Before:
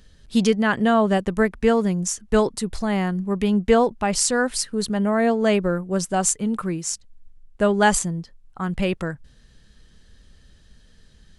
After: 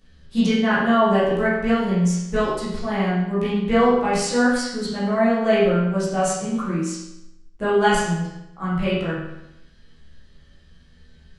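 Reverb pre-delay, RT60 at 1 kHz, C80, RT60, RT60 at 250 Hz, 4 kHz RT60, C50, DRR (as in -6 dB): 12 ms, 0.90 s, 3.5 dB, 0.90 s, 0.90 s, 0.80 s, 0.0 dB, -12.0 dB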